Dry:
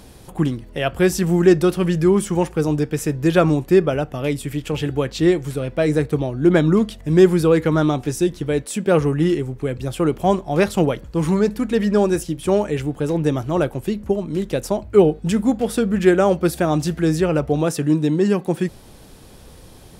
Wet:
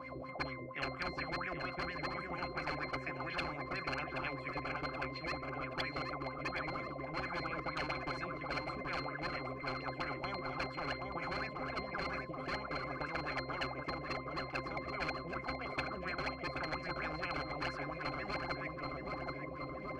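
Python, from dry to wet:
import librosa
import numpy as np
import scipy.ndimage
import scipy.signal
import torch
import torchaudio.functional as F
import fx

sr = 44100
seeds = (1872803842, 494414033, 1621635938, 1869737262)

p1 = scipy.signal.sosfilt(scipy.signal.butter(2, 100.0, 'highpass', fs=sr, output='sos'), x)
p2 = fx.low_shelf(p1, sr, hz=160.0, db=4.0)
p3 = fx.level_steps(p2, sr, step_db=23)
p4 = p2 + (p3 * 10.0 ** (0.5 / 20.0))
p5 = fx.wah_lfo(p4, sr, hz=4.3, low_hz=350.0, high_hz=2100.0, q=8.2)
p6 = fx.rider(p5, sr, range_db=5, speed_s=0.5)
p7 = 10.0 ** (-22.5 / 20.0) * (np.abs((p6 / 10.0 ** (-22.5 / 20.0) + 3.0) % 4.0 - 2.0) - 1.0)
p8 = fx.octave_resonator(p7, sr, note='C', decay_s=0.22)
p9 = fx.echo_feedback(p8, sr, ms=777, feedback_pct=44, wet_db=-11)
p10 = fx.spectral_comp(p9, sr, ratio=10.0)
y = p10 * 10.0 ** (4.5 / 20.0)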